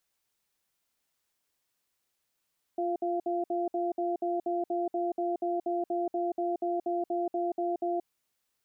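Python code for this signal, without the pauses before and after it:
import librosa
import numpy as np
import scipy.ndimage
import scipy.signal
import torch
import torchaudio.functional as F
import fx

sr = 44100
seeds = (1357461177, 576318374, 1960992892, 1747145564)

y = fx.cadence(sr, length_s=5.24, low_hz=349.0, high_hz=692.0, on_s=0.18, off_s=0.06, level_db=-30.0)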